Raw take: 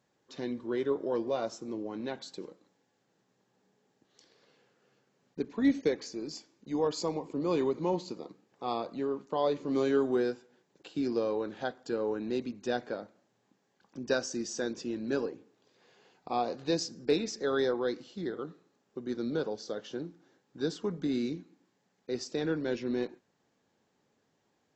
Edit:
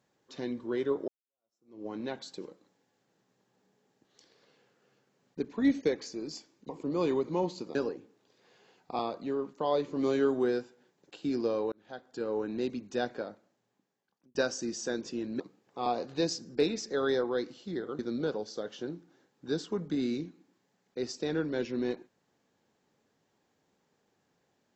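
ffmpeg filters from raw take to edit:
ffmpeg -i in.wav -filter_complex "[0:a]asplit=10[link_01][link_02][link_03][link_04][link_05][link_06][link_07][link_08][link_09][link_10];[link_01]atrim=end=1.08,asetpts=PTS-STARTPTS,afade=type=out:start_time=1.076:duration=0.004:curve=hsin[link_11];[link_02]atrim=start=1.08:end=6.692,asetpts=PTS-STARTPTS,afade=type=in:duration=0.78:curve=exp[link_12];[link_03]atrim=start=7.188:end=8.252[link_13];[link_04]atrim=start=15.118:end=16.362[link_14];[link_05]atrim=start=8.708:end=11.44,asetpts=PTS-STARTPTS,afade=type=out:start_time=2.728:duration=0.004:curve=hsin[link_15];[link_06]atrim=start=11.44:end=14.07,asetpts=PTS-STARTPTS,afade=type=in:duration=0.66,afade=type=out:start_time=1.41:duration=1.22[link_16];[link_07]atrim=start=14.07:end=15.122,asetpts=PTS-STARTPTS,afade=type=in:duration=0.004:curve=hsin[link_17];[link_08]atrim=start=8.248:end=8.712[link_18];[link_09]atrim=start=16.358:end=18.492[link_19];[link_10]atrim=start=19.108[link_20];[link_11][link_12]concat=n=2:v=0:a=1[link_21];[link_21][link_13]acrossfade=duration=0.004:curve1=hsin:curve2=hsin[link_22];[link_22][link_14]acrossfade=duration=0.004:curve1=hsin:curve2=hsin[link_23];[link_15][link_16][link_17]concat=n=3:v=0:a=1[link_24];[link_23][link_24]acrossfade=duration=0.004:curve1=hsin:curve2=hsin[link_25];[link_25][link_18]acrossfade=duration=0.004:curve1=hsin:curve2=hsin[link_26];[link_26][link_19]acrossfade=duration=0.004:curve1=hsin:curve2=hsin[link_27];[link_27][link_20]acrossfade=duration=0.004:curve1=hsin:curve2=hsin" out.wav

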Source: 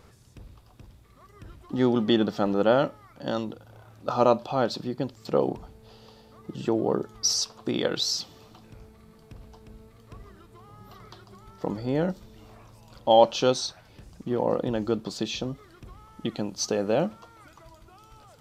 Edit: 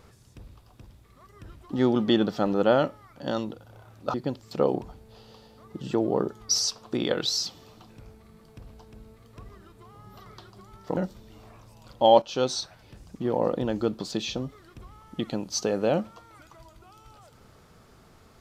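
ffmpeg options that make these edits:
ffmpeg -i in.wav -filter_complex "[0:a]asplit=4[link_01][link_02][link_03][link_04];[link_01]atrim=end=4.142[link_05];[link_02]atrim=start=4.878:end=11.712[link_06];[link_03]atrim=start=12.028:end=13.28,asetpts=PTS-STARTPTS,afade=type=out:start_time=1.248:duration=0.004:curve=hsin:silence=0.251189[link_07];[link_04]atrim=start=13.28,asetpts=PTS-STARTPTS,afade=type=in:duration=0.34:silence=0.251189[link_08];[link_05][link_06]acrossfade=duration=0.004:curve1=hsin:curve2=hsin[link_09];[link_07][link_08]concat=n=2:v=0:a=1[link_10];[link_09][link_10]acrossfade=duration=0.004:curve1=hsin:curve2=hsin" out.wav

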